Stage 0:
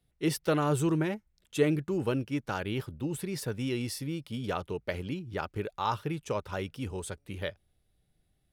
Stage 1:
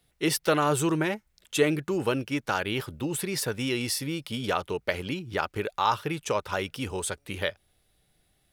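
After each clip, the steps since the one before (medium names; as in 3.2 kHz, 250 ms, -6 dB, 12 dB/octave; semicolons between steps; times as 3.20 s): bass shelf 390 Hz -10.5 dB; in parallel at -1 dB: compression, threshold -41 dBFS, peak gain reduction 16 dB; on the sum: trim +6 dB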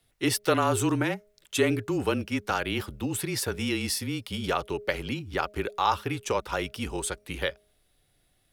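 frequency shift -28 Hz; de-hum 207.8 Hz, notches 3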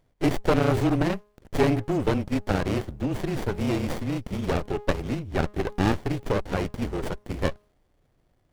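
sliding maximum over 33 samples; trim +4 dB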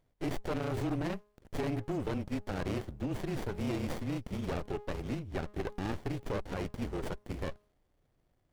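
peak limiter -19 dBFS, peak gain reduction 10 dB; trim -7 dB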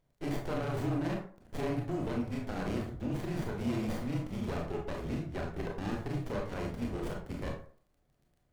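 crackle 14 per s -55 dBFS; reverberation RT60 0.45 s, pre-delay 22 ms, DRR 0 dB; trim -3 dB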